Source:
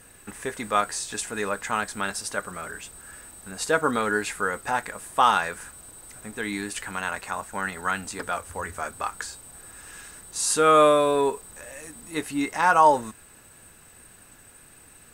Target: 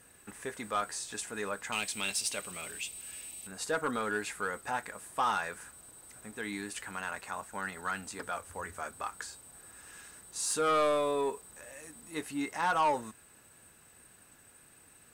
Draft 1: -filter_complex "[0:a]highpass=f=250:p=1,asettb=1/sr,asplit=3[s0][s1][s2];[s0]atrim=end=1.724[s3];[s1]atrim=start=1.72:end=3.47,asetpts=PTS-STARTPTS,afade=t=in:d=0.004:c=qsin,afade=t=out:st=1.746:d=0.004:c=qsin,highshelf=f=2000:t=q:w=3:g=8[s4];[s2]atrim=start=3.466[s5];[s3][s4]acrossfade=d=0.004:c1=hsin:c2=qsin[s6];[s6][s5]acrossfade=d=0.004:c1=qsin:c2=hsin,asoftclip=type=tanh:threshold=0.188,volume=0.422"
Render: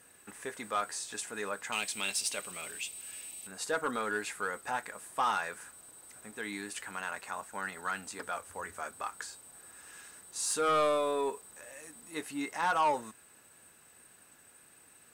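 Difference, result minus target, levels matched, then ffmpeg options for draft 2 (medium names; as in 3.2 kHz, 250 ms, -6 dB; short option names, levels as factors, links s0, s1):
125 Hz band -4.0 dB
-filter_complex "[0:a]highpass=f=74:p=1,asettb=1/sr,asplit=3[s0][s1][s2];[s0]atrim=end=1.724[s3];[s1]atrim=start=1.72:end=3.47,asetpts=PTS-STARTPTS,afade=t=in:d=0.004:c=qsin,afade=t=out:st=1.746:d=0.004:c=qsin,highshelf=f=2000:t=q:w=3:g=8[s4];[s2]atrim=start=3.466[s5];[s3][s4]acrossfade=d=0.004:c1=hsin:c2=qsin[s6];[s6][s5]acrossfade=d=0.004:c1=qsin:c2=hsin,asoftclip=type=tanh:threshold=0.188,volume=0.422"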